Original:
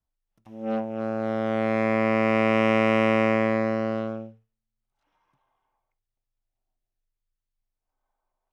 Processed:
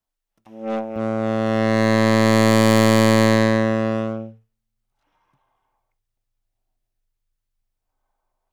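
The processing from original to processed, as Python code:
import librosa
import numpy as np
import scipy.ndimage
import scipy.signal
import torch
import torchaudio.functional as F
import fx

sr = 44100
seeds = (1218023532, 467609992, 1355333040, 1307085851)

y = fx.tracing_dist(x, sr, depth_ms=0.21)
y = fx.peak_eq(y, sr, hz=64.0, db=fx.steps((0.0, -13.0), (0.96, 4.0)), octaves=2.6)
y = F.gain(torch.from_numpy(y), 4.5).numpy()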